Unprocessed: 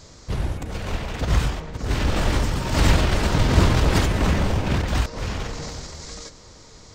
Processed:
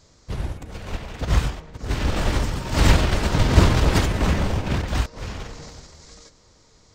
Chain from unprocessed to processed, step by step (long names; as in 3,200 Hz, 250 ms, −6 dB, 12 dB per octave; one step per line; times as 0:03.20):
expander for the loud parts 1.5 to 1, over −36 dBFS
level +3 dB